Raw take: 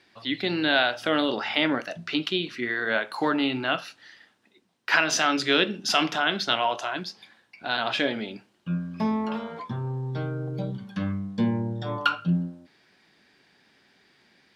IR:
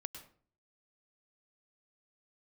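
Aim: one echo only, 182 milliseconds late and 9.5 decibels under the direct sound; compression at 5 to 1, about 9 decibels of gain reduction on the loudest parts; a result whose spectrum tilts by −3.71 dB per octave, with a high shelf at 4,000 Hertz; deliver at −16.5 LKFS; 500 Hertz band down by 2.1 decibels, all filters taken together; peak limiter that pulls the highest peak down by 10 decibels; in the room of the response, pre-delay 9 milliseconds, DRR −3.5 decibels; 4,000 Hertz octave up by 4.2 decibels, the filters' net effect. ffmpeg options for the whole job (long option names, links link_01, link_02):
-filter_complex "[0:a]equalizer=frequency=500:width_type=o:gain=-3,highshelf=frequency=4000:gain=3.5,equalizer=frequency=4000:width_type=o:gain=3.5,acompressor=threshold=-26dB:ratio=5,alimiter=limit=-20dB:level=0:latency=1,aecho=1:1:182:0.335,asplit=2[link_01][link_02];[1:a]atrim=start_sample=2205,adelay=9[link_03];[link_02][link_03]afir=irnorm=-1:irlink=0,volume=6.5dB[link_04];[link_01][link_04]amix=inputs=2:normalize=0,volume=9.5dB"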